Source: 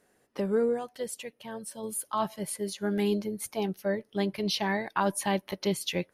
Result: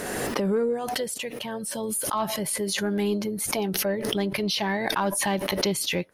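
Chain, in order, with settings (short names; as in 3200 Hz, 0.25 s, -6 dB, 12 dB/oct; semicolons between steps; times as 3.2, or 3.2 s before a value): in parallel at +3 dB: compressor, threshold -38 dBFS, peak gain reduction 15 dB; on the sum: soft clip -14.5 dBFS, distortion -24 dB; backwards sustainer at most 23 dB/s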